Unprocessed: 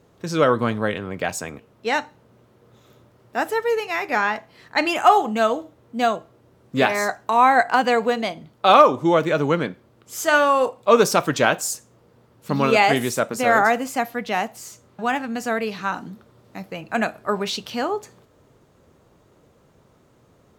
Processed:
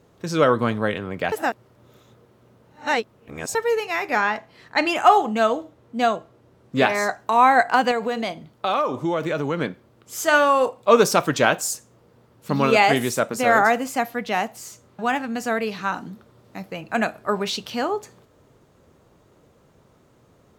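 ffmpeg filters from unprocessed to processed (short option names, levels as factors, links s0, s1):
-filter_complex "[0:a]asettb=1/sr,asplit=3[s0][s1][s2];[s0]atrim=end=4.204[s3];[s1]atrim=start=4.2:end=7.18,asetpts=PTS-STARTPTS,afade=t=in:d=0.004:c=qsin,afade=t=out:st=2.976:d=0.004:c=qsin,highshelf=f=11000:g=-7[s4];[s2]atrim=start=7.176[s5];[s3][s4]acrossfade=d=0.004:c1=hsin:c2=qsin[s6];[s6][s5]acrossfade=d=0.004:c1=qsin:c2=hsin,asettb=1/sr,asplit=3[s7][s8][s9];[s7]atrim=end=7.914[s10];[s8]atrim=start=7.91:end=9.61,asetpts=PTS-STARTPTS,afade=t=in:d=0.004:c=qsin,afade=t=out:st=1.696:d=0.004:c=qsin,acompressor=threshold=0.0891:ratio=3:attack=3.2:release=140:knee=1:detection=peak[s11];[s9]atrim=start=9.606[s12];[s10][s11]acrossfade=d=0.004:c1=hsin:c2=qsin[s13];[s13][s12]acrossfade=d=0.004:c1=qsin:c2=hsin,asplit=3[s14][s15][s16];[s14]atrim=end=1.322[s17];[s15]atrim=start=1.318:end=3.552,asetpts=PTS-STARTPTS,areverse[s18];[s16]atrim=start=3.548[s19];[s17][s18]acrossfade=d=0.004:c1=hsin:c2=hsin[s20];[s20][s19]acrossfade=d=0.004:c1=hsin:c2=hsin"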